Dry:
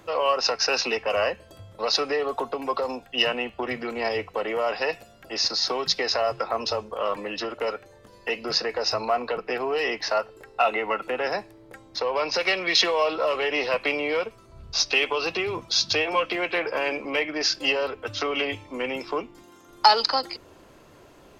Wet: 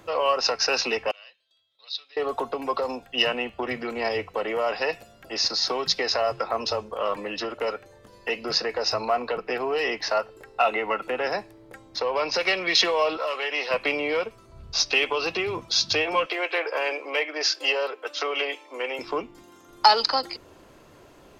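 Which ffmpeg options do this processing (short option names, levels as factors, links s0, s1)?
-filter_complex "[0:a]asettb=1/sr,asplit=3[s0][s1][s2];[s0]atrim=end=1.114[s3];[s1]atrim=start=1.11:end=2.17,asetpts=PTS-STARTPTS,afade=t=in:d=0.004:c=qsin,afade=t=out:st=1.056:d=0.004:c=qsin,bandpass=f=3700:t=q:w=9.7[s4];[s2]atrim=start=2.166[s5];[s3][s4]acrossfade=d=0.004:c1=hsin:c2=qsin[s6];[s6][s5]acrossfade=d=0.004:c1=qsin:c2=hsin,asettb=1/sr,asplit=3[s7][s8][s9];[s7]atrim=end=13.174[s10];[s8]atrim=start=13.17:end=13.71,asetpts=PTS-STARTPTS,afade=t=in:d=0.004:c=qsin,afade=t=out:st=0.536:d=0.004:c=qsin,highpass=f=880:p=1[s11];[s9]atrim=start=13.706[s12];[s10][s11]acrossfade=d=0.004:c1=hsin:c2=qsin[s13];[s13][s12]acrossfade=d=0.004:c1=qsin:c2=hsin,asettb=1/sr,asplit=3[s14][s15][s16];[s14]atrim=end=16.264[s17];[s15]atrim=start=16.26:end=18.99,asetpts=PTS-STARTPTS,afade=t=in:d=0.004:c=qsin,afade=t=out:st=2.726:d=0.004:c=qsin,highpass=f=380:w=0.5412,highpass=f=380:w=1.3066[s18];[s16]atrim=start=18.986[s19];[s17][s18]acrossfade=d=0.004:c1=hsin:c2=qsin[s20];[s20][s19]acrossfade=d=0.004:c1=qsin:c2=hsin"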